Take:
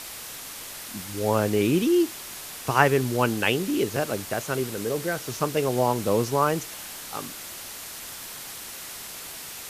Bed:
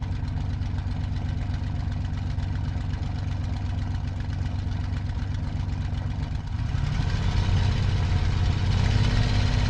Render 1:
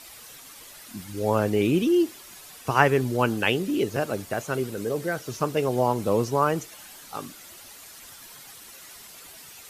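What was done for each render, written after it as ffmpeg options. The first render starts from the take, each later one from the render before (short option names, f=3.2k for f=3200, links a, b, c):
-af "afftdn=nr=10:nf=-39"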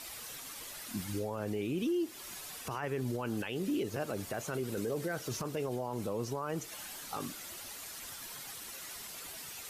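-af "acompressor=threshold=-29dB:ratio=5,alimiter=level_in=2.5dB:limit=-24dB:level=0:latency=1:release=15,volume=-2.5dB"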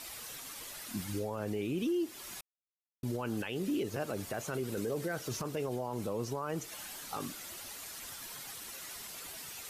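-filter_complex "[0:a]asplit=3[a][b][c];[a]atrim=end=2.41,asetpts=PTS-STARTPTS,afade=t=out:st=2.406:d=0.004:c=hsin[d];[b]atrim=start=2.41:end=3.03,asetpts=PTS-STARTPTS,volume=0[e];[c]atrim=start=3.03,asetpts=PTS-STARTPTS,afade=t=in:d=0.004:c=hsin[f];[d][e][f]concat=n=3:v=0:a=1"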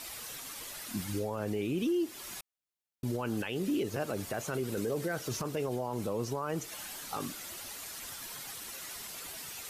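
-af "volume=2dB"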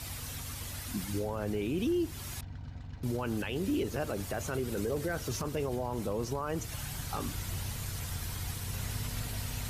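-filter_complex "[1:a]volume=-15.5dB[a];[0:a][a]amix=inputs=2:normalize=0"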